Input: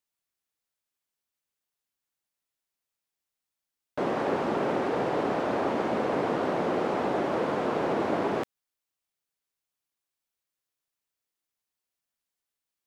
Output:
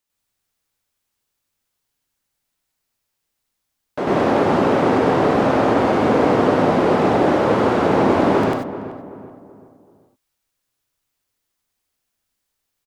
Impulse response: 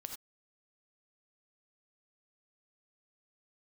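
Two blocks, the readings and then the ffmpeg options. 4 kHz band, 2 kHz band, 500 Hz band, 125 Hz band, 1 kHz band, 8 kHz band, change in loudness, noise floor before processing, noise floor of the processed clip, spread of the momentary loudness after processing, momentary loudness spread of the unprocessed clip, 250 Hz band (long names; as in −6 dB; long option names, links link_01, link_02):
+10.5 dB, +10.5 dB, +11.0 dB, +15.0 dB, +11.0 dB, can't be measured, +11.5 dB, below −85 dBFS, −77 dBFS, 10 LU, 3 LU, +13.0 dB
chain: -filter_complex "[0:a]asplit=2[link_01][link_02];[link_02]adelay=382,lowpass=frequency=1400:poles=1,volume=-12.5dB,asplit=2[link_03][link_04];[link_04]adelay=382,lowpass=frequency=1400:poles=1,volume=0.44,asplit=2[link_05][link_06];[link_06]adelay=382,lowpass=frequency=1400:poles=1,volume=0.44,asplit=2[link_07][link_08];[link_08]adelay=382,lowpass=frequency=1400:poles=1,volume=0.44[link_09];[link_01][link_03][link_05][link_07][link_09]amix=inputs=5:normalize=0,asplit=2[link_10][link_11];[1:a]atrim=start_sample=2205,lowshelf=frequency=140:gain=10.5,adelay=98[link_12];[link_11][link_12]afir=irnorm=-1:irlink=0,volume=6.5dB[link_13];[link_10][link_13]amix=inputs=2:normalize=0,volume=5.5dB"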